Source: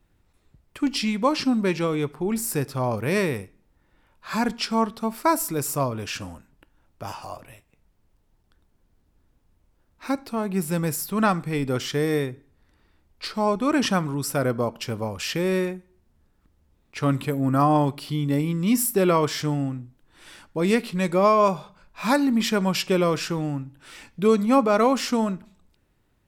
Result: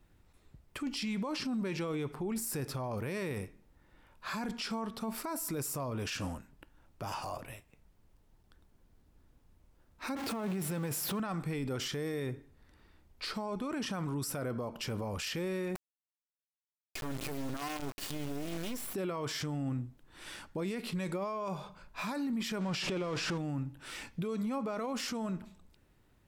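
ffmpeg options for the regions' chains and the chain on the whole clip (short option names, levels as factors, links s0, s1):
-filter_complex "[0:a]asettb=1/sr,asplit=3[s0][s1][s2];[s0]atrim=end=10.154[s3];[s1]atrim=start=10.15:end=11.2,asetpts=PTS-STARTPTS,afade=t=in:d=0.004:c=qsin,afade=t=out:st=1.046:d=0.004:c=qsin,aeval=exprs='val(0)+0.5*0.0299*sgn(val(0))':c=same,highpass=f=120:p=1,adynamicequalizer=threshold=0.00562:dfrequency=3900:dqfactor=0.7:tfrequency=3900:tqfactor=0.7:attack=5:release=100:ratio=0.375:range=2.5:mode=cutabove:tftype=highshelf[s4];[s2]atrim=start=11.196[s5];[s3][s4]acrossfade=d=0.004:c1=hsin:c2=qsin[s6];[s6][s5]acrossfade=d=0.004:c1=qsin:c2=hsin,asettb=1/sr,asplit=3[s7][s8][s9];[s7]atrim=end=15.754[s10];[s8]atrim=start=15.75:end=18.94,asetpts=PTS-STARTPTS,afade=t=in:d=0.004:c=qsin,afade=t=out:st=3.186:d=0.004:c=qsin,aecho=1:1:2.8:0.72,atrim=end_sample=140679,acrusher=bits=3:dc=4:mix=0:aa=0.000001[s11];[s9]atrim=start=18.936[s12];[s10][s11]acrossfade=d=0.004:c1=hsin:c2=qsin[s13];[s13][s12]acrossfade=d=0.004:c1=qsin:c2=hsin,asettb=1/sr,asplit=3[s14][s15][s16];[s14]atrim=end=22.614[s17];[s15]atrim=start=22.61:end=23.38,asetpts=PTS-STARTPTS,afade=t=in:d=0.004:c=qsin,afade=t=out:st=0.766:d=0.004:c=qsin,aeval=exprs='val(0)+0.5*0.0447*sgn(val(0))':c=same,lowpass=6100[s18];[s16]atrim=start=23.376[s19];[s17][s18]acrossfade=d=0.004:c1=hsin:c2=qsin[s20];[s20][s19]acrossfade=d=0.004:c1=qsin:c2=hsin,acompressor=threshold=0.0501:ratio=6,alimiter=level_in=1.78:limit=0.0631:level=0:latency=1:release=16,volume=0.562"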